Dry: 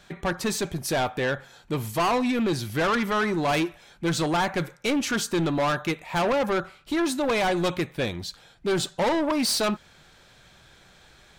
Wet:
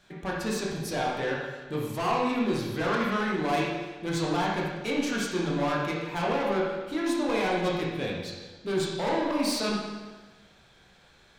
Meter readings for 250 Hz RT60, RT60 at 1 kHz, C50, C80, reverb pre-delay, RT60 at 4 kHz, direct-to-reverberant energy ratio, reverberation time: 1.4 s, 1.3 s, 0.0 dB, 3.0 dB, 20 ms, 1.2 s, -3.5 dB, 1.3 s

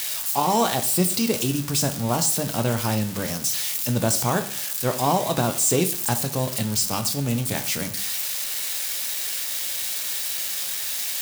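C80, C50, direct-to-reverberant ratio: 16.5 dB, 13.0 dB, 7.5 dB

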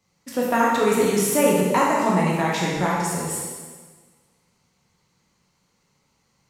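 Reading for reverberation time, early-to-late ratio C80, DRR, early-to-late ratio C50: 1.5 s, 2.0 dB, -4.5 dB, 0.0 dB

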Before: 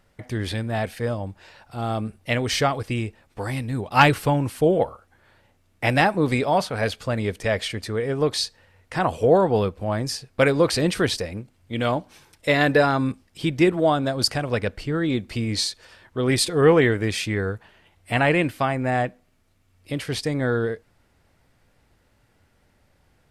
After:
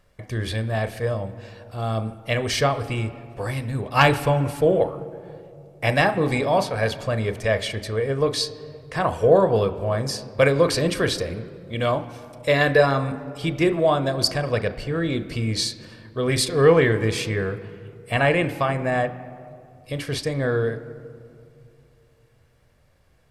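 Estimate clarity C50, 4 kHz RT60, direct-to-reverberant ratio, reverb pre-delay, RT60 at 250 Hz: 14.0 dB, 1.3 s, 10.0 dB, 36 ms, 2.8 s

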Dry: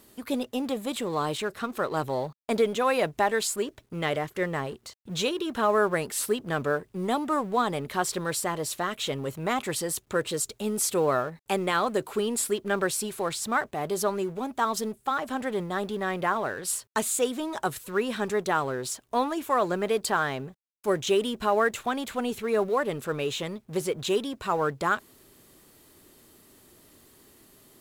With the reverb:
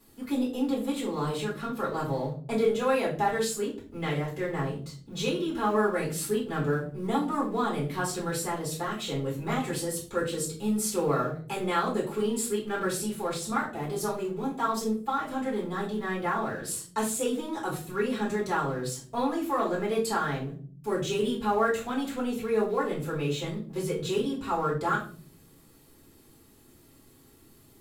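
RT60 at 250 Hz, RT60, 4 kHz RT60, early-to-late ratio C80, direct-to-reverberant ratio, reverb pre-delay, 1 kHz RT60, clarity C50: 0.80 s, 0.45 s, 0.30 s, 13.5 dB, -6.5 dB, 3 ms, 0.40 s, 8.5 dB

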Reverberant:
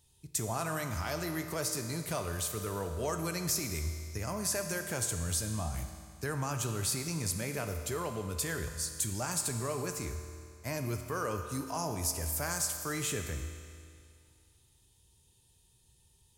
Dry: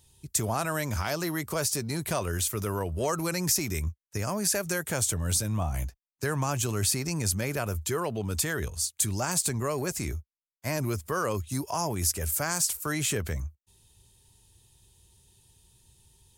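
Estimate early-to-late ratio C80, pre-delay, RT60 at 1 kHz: 8.0 dB, 5 ms, 2.3 s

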